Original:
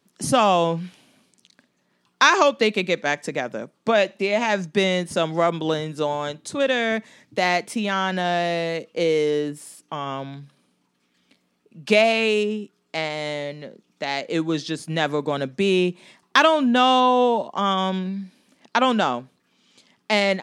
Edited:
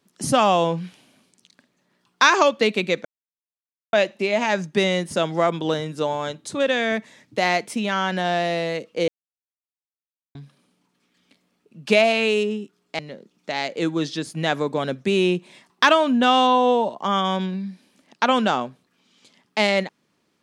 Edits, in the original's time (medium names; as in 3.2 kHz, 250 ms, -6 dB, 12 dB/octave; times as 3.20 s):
3.05–3.93 s: mute
9.08–10.35 s: mute
12.99–13.52 s: delete